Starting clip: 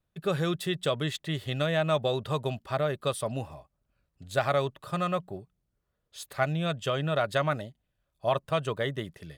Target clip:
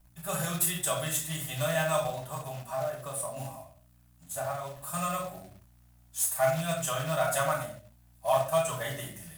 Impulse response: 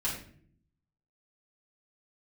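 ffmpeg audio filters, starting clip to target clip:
-filter_complex "[0:a]aeval=exprs='val(0)+0.00282*(sin(2*PI*60*n/s)+sin(2*PI*2*60*n/s)/2+sin(2*PI*3*60*n/s)/3+sin(2*PI*4*60*n/s)/4+sin(2*PI*5*60*n/s)/5)':channel_layout=same,asettb=1/sr,asplit=3[link_01][link_02][link_03];[link_01]atrim=end=2.054[link_04];[link_02]atrim=start=2.05:end=4.77,asetpts=PTS-STARTPTS,afade=type=in:duration=0.004:curve=qsin,afade=type=out:start_time=2.716:duration=0.004:curve=qsin,acrossover=split=81|1400[link_05][link_06][link_07];[link_05]acompressor=threshold=-59dB:ratio=4[link_08];[link_06]acompressor=threshold=-30dB:ratio=4[link_09];[link_07]acompressor=threshold=-51dB:ratio=4[link_10];[link_08][link_09][link_10]amix=inputs=3:normalize=0[link_11];[link_03]atrim=start=4.766[link_12];[link_04][link_11]acrossfade=duration=0.004:curve1=hsin:curve2=qsin[link_13];[link_13][link_12]acrossfade=duration=0.004:curve1=qsin:curve2=hsin,aexciter=amount=15.1:drive=2.6:freq=6300[link_14];[1:a]atrim=start_sample=2205,afade=type=out:start_time=0.31:duration=0.01,atrim=end_sample=14112[link_15];[link_14][link_15]afir=irnorm=-1:irlink=0,acrusher=bits=4:mode=log:mix=0:aa=0.000001,lowshelf=frequency=540:width_type=q:width=3:gain=-6.5,volume=-7.5dB"

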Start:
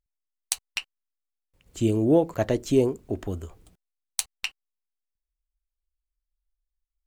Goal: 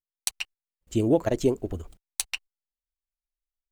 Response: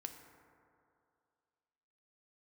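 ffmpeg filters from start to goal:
-af "asubboost=boost=3:cutoff=59,agate=range=-20dB:threshold=-57dB:ratio=16:detection=peak,atempo=1.9"

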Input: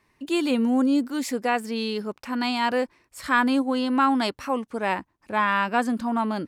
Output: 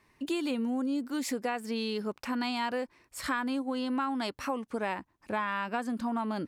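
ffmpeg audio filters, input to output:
ffmpeg -i in.wav -af "acompressor=threshold=-29dB:ratio=6" out.wav

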